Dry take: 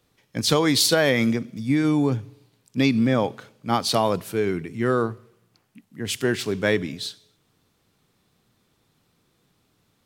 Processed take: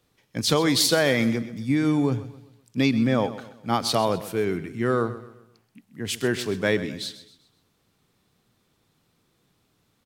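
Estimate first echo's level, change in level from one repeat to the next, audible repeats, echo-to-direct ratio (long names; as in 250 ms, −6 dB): −15.0 dB, −8.0 dB, 3, −14.0 dB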